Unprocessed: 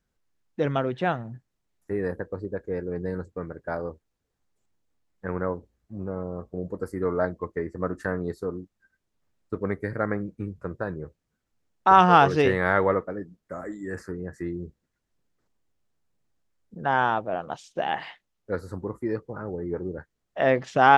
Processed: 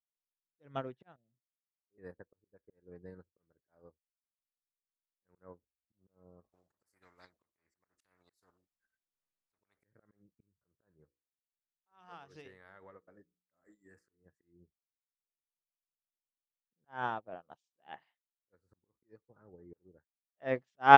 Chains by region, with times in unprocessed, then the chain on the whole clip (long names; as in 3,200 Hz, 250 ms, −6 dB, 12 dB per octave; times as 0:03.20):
0:01.16–0:01.98: Butterworth low-pass 650 Hz 48 dB per octave + low-shelf EQ 170 Hz −10.5 dB
0:06.44–0:09.84: low-shelf EQ 460 Hz −11 dB + every bin compressed towards the loudest bin 4 to 1
0:10.91–0:14.26: high-shelf EQ 2,300 Hz +9 dB + mains-hum notches 60/120/180/240/300/360/420/480/540 Hz + downward compressor 4 to 1, threshold −29 dBFS
whole clip: volume swells 206 ms; expander for the loud parts 2.5 to 1, over −41 dBFS; level +2.5 dB